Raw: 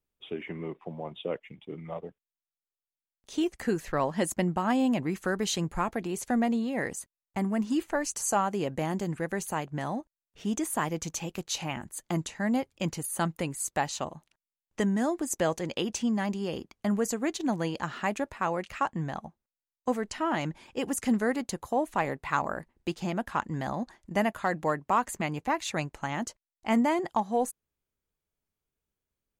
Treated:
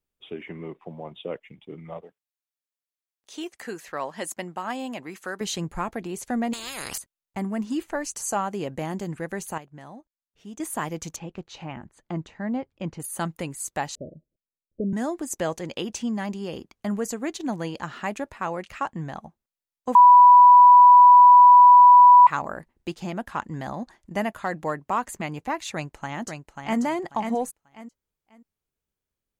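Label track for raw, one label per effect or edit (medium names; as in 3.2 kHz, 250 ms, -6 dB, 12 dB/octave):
2.020000	5.410000	high-pass 680 Hz 6 dB/octave
6.530000	6.980000	spectrum-flattening compressor 10:1
9.580000	10.600000	gain -10.5 dB
11.160000	13.000000	tape spacing loss at 10 kHz 26 dB
13.950000	14.930000	steep low-pass 610 Hz 96 dB/octave
19.950000	22.270000	bleep 985 Hz -7.5 dBFS
25.730000	26.800000	echo throw 540 ms, feedback 25%, level -5.5 dB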